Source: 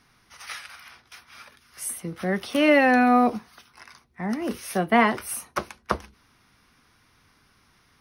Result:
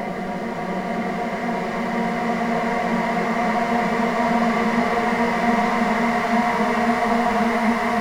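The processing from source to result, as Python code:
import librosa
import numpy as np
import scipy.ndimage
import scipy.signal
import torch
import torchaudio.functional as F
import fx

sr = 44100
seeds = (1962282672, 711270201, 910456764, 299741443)

y = fx.backlash(x, sr, play_db=-20.0)
y = fx.paulstretch(y, sr, seeds[0], factor=18.0, window_s=1.0, from_s=4.66)
y = F.gain(torch.from_numpy(y), 2.0).numpy()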